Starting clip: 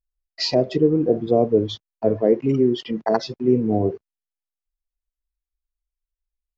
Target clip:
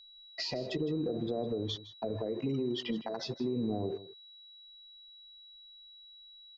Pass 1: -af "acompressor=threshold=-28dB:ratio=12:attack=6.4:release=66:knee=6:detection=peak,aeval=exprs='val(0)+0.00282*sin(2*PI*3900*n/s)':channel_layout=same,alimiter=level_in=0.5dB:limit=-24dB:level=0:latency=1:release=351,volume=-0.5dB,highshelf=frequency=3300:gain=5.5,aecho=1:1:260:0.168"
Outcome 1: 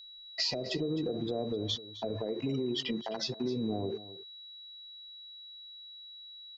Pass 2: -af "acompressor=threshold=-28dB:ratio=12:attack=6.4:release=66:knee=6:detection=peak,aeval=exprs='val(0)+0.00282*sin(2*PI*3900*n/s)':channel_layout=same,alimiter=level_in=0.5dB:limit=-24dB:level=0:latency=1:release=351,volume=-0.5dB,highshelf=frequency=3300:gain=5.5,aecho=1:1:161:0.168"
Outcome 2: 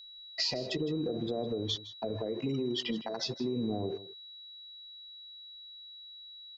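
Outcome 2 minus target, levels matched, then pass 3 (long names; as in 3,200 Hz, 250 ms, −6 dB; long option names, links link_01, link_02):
8,000 Hz band +6.0 dB
-af "acompressor=threshold=-28dB:ratio=12:attack=6.4:release=66:knee=6:detection=peak,aeval=exprs='val(0)+0.00282*sin(2*PI*3900*n/s)':channel_layout=same,alimiter=level_in=0.5dB:limit=-24dB:level=0:latency=1:release=351,volume=-0.5dB,highshelf=frequency=3300:gain=-3.5,aecho=1:1:161:0.168"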